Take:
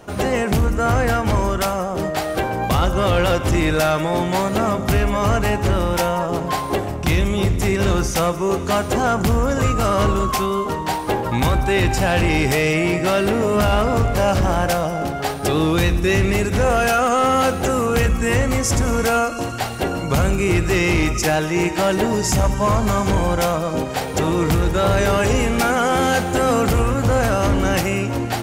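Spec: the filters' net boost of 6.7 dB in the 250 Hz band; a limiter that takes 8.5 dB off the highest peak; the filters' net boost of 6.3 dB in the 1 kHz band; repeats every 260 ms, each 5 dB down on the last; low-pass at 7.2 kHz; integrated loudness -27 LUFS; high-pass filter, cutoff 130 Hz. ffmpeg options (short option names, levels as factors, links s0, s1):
-af "highpass=130,lowpass=7200,equalizer=f=250:t=o:g=9,equalizer=f=1000:t=o:g=8,alimiter=limit=0.355:level=0:latency=1,aecho=1:1:260|520|780|1040|1300|1560|1820:0.562|0.315|0.176|0.0988|0.0553|0.031|0.0173,volume=0.299"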